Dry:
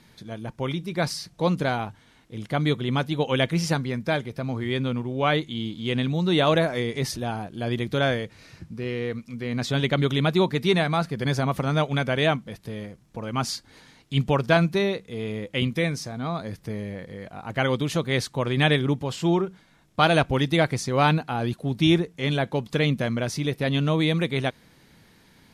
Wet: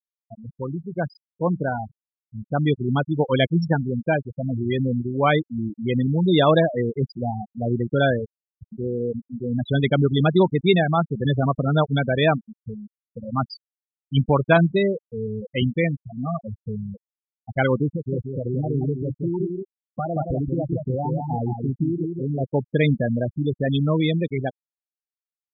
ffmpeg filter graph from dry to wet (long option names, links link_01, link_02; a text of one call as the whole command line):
ffmpeg -i in.wav -filter_complex "[0:a]asettb=1/sr,asplit=3[link_01][link_02][link_03];[link_01]atrim=end=17.894[link_04];[link_02]atrim=start=17.89:end=22.44,asetpts=PTS-STARTPTS,afade=type=in:duration=0.004:curve=qsin,afade=type=out:start_time=4.546:duration=0.004:curve=qsin,lowpass=1000,acompressor=threshold=-24dB:ratio=16:attack=3.2:release=140:knee=1:detection=peak,aecho=1:1:175:0.668,atrim=end_sample=200655[link_05];[link_03]atrim=start=22.436[link_06];[link_04][link_05]acrossfade=duration=0.004:curve1=hsin:curve2=qsin[link_07];[link_07][link_06]acrossfade=duration=0.004:curve1=qsin:curve2=hsin,afftfilt=real='re*gte(hypot(re,im),0.141)':imag='im*gte(hypot(re,im),0.141)':win_size=1024:overlap=0.75,dynaudnorm=framelen=440:gausssize=11:maxgain=4.5dB" out.wav